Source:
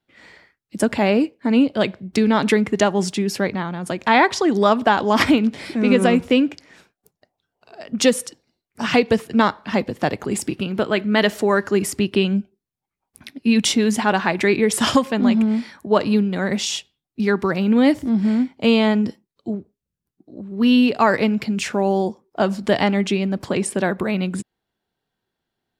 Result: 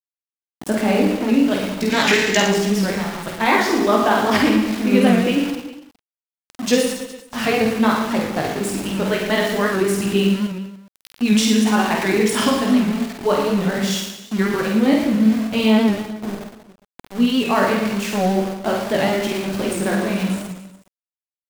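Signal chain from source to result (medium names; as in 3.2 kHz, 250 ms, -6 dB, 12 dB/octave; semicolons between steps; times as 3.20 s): on a send at -5 dB: reverberation RT60 0.70 s, pre-delay 43 ms; on the sum: chorus 0.22 Hz, delay 18 ms, depth 3.1 ms; small samples zeroed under -27.5 dBFS; time-frequency box 2.28–2.92 s, 1.5–7.9 kHz +9 dB; tempo 1.2×; reverse bouncing-ball echo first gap 50 ms, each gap 1.25×, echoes 5; warped record 78 rpm, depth 100 cents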